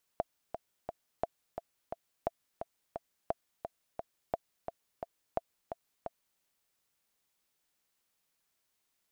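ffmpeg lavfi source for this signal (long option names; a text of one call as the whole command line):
ffmpeg -f lavfi -i "aevalsrc='pow(10,(-17-7.5*gte(mod(t,3*60/174),60/174))/20)*sin(2*PI*675*mod(t,60/174))*exp(-6.91*mod(t,60/174)/0.03)':duration=6.2:sample_rate=44100" out.wav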